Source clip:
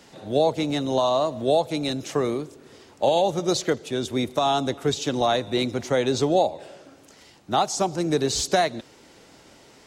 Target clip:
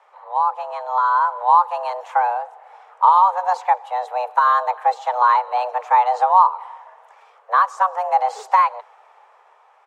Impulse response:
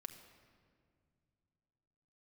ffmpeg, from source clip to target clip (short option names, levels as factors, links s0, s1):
-af "dynaudnorm=f=170:g=13:m=2.66,firequalizer=gain_entry='entry(310,0);entry(460,10);entry(4100,-16)':delay=0.05:min_phase=1,afreqshift=370,volume=0.422"